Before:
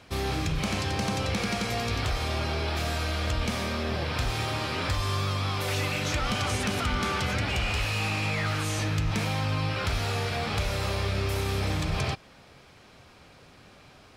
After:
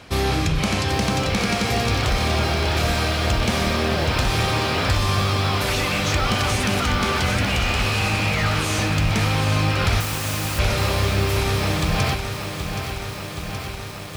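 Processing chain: gain riding; 10.00–10.59 s: integer overflow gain 33 dB; bit-crushed delay 773 ms, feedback 80%, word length 8-bit, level -8 dB; trim +7 dB

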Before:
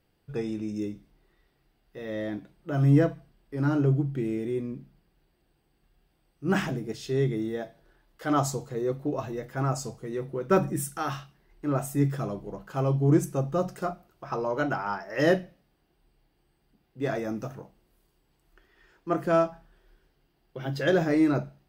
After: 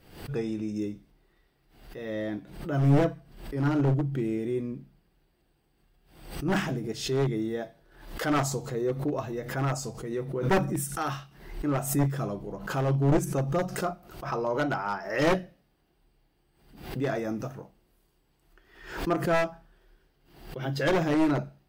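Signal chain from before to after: one-sided wavefolder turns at -20.5 dBFS; swell ahead of each attack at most 87 dB/s

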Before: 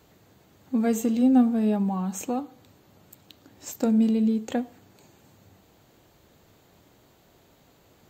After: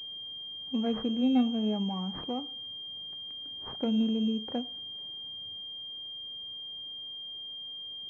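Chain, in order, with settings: class-D stage that switches slowly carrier 3.2 kHz; trim -6.5 dB

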